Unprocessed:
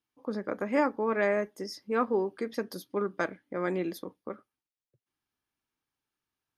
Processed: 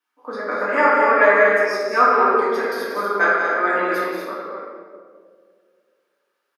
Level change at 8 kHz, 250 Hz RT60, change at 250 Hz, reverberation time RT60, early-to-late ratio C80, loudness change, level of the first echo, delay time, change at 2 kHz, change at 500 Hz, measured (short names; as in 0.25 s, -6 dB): n/a, 2.2 s, +3.5 dB, 2.0 s, -1.5 dB, +14.0 dB, -5.5 dB, 0.182 s, +19.0 dB, +11.5 dB